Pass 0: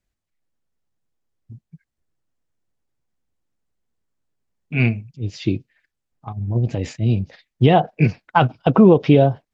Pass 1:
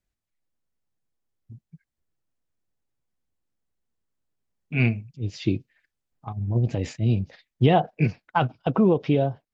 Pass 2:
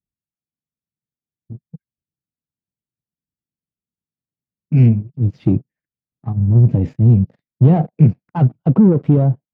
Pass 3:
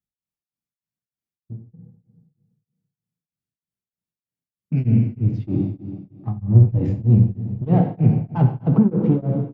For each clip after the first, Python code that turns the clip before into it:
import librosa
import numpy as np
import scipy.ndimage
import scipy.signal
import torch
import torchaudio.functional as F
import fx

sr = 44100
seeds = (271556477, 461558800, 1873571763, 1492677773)

y1 = fx.rider(x, sr, range_db=4, speed_s=2.0)
y1 = y1 * librosa.db_to_amplitude(-6.5)
y2 = fx.leveller(y1, sr, passes=3)
y2 = fx.bandpass_q(y2, sr, hz=160.0, q=1.3)
y2 = y2 * librosa.db_to_amplitude(5.5)
y3 = fx.rev_plate(y2, sr, seeds[0], rt60_s=1.8, hf_ratio=0.85, predelay_ms=0, drr_db=2.5)
y3 = y3 * np.abs(np.cos(np.pi * 3.2 * np.arange(len(y3)) / sr))
y3 = y3 * librosa.db_to_amplitude(-2.5)